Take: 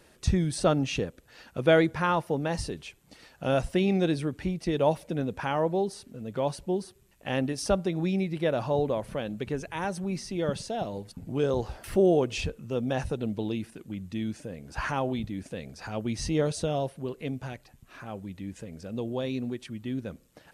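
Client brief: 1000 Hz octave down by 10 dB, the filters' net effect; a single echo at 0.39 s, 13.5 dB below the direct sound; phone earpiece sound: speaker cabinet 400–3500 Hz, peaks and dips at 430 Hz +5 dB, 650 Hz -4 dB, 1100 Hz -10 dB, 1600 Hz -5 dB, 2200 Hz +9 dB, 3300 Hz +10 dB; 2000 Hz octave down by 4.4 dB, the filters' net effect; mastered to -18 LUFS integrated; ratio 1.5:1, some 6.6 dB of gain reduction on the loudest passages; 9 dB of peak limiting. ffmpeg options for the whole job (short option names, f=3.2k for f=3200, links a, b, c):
-af "equalizer=f=1k:t=o:g=-7.5,equalizer=f=2k:t=o:g=-7,acompressor=threshold=-38dB:ratio=1.5,alimiter=level_in=3.5dB:limit=-24dB:level=0:latency=1,volume=-3.5dB,highpass=400,equalizer=f=430:t=q:w=4:g=5,equalizer=f=650:t=q:w=4:g=-4,equalizer=f=1.1k:t=q:w=4:g=-10,equalizer=f=1.6k:t=q:w=4:g=-5,equalizer=f=2.2k:t=q:w=4:g=9,equalizer=f=3.3k:t=q:w=4:g=10,lowpass=f=3.5k:w=0.5412,lowpass=f=3.5k:w=1.3066,aecho=1:1:390:0.211,volume=23.5dB"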